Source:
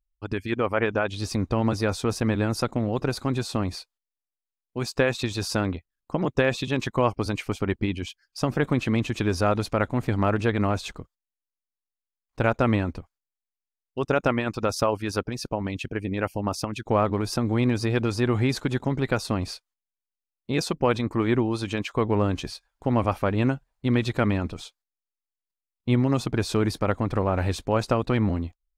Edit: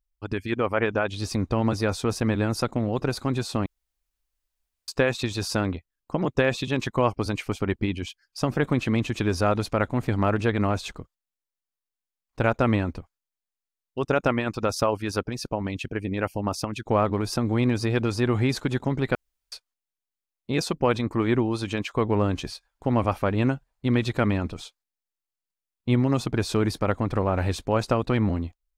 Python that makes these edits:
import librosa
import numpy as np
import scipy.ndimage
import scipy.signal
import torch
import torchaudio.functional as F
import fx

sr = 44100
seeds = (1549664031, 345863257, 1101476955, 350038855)

y = fx.edit(x, sr, fx.room_tone_fill(start_s=3.66, length_s=1.22),
    fx.room_tone_fill(start_s=19.15, length_s=0.37), tone=tone)